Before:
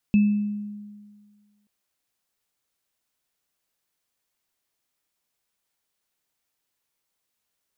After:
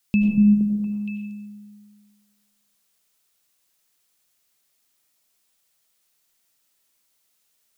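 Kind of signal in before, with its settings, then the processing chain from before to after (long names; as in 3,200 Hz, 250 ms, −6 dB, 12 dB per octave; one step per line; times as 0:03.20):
inharmonic partials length 1.53 s, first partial 207 Hz, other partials 2,620 Hz, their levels −18 dB, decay 1.70 s, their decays 0.61 s, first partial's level −13 dB
high-shelf EQ 2,400 Hz +10.5 dB
on a send: echo through a band-pass that steps 234 ms, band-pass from 160 Hz, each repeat 1.4 octaves, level −0.5 dB
on the sum: comb and all-pass reverb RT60 1.2 s, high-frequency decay 0.3×, pre-delay 55 ms, DRR 1.5 dB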